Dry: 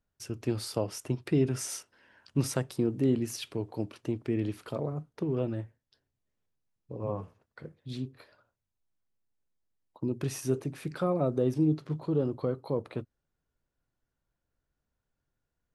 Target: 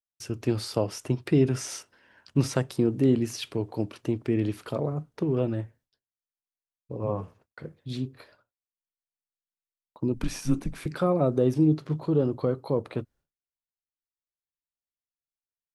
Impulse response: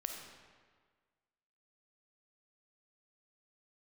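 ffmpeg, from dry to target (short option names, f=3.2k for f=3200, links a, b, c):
-filter_complex "[0:a]agate=range=-33dB:threshold=-58dB:ratio=3:detection=peak,asettb=1/sr,asplit=3[a][b][c];[a]atrim=end=10.144[d];[b]atrim=start=10.14:end=10.86,asetpts=PTS-STARTPTS,afade=t=in:d=0.004:c=qsin,afade=t=out:st=0.716:d=0.004:c=qsin,afreqshift=-120[e];[c]atrim=start=10.856[f];[d][e]acrossfade=d=0.004:c1=hsin:c2=qsin[g];[g][f]acrossfade=d=0.004:c1=qsin:c2=hsin,acrossover=split=6600[h][i];[i]acompressor=threshold=-49dB:ratio=4:attack=1:release=60[j];[h][j]amix=inputs=2:normalize=0,volume=4.5dB"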